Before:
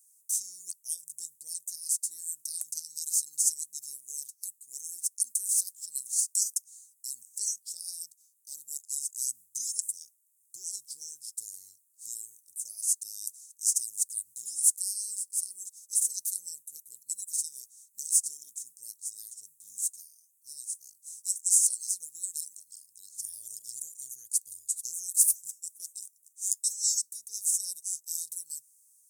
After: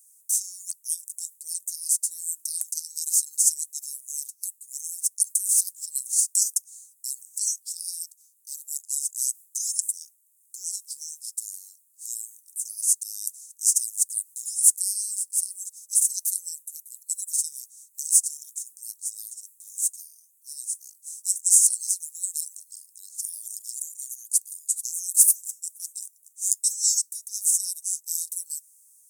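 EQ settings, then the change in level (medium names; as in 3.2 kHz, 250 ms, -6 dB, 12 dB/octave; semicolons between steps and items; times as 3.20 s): high-pass 370 Hz 12 dB/octave; treble shelf 3.3 kHz +10 dB; -3.0 dB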